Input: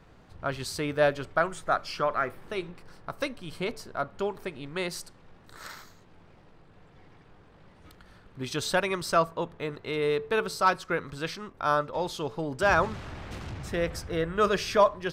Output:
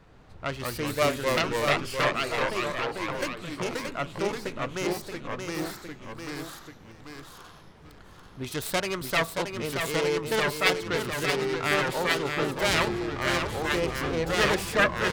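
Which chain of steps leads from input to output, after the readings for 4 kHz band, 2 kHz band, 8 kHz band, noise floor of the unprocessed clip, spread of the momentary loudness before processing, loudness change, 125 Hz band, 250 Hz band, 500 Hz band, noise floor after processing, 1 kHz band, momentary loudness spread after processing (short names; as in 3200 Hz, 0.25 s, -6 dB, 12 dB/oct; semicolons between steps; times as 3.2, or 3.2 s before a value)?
+6.5 dB, +4.5 dB, +5.0 dB, -56 dBFS, 15 LU, +1.5 dB, +3.0 dB, +3.5 dB, +0.5 dB, -50 dBFS, -1.0 dB, 13 LU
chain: self-modulated delay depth 0.42 ms; feedback echo 0.626 s, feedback 16%, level -6 dB; echoes that change speed 0.135 s, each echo -2 st, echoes 2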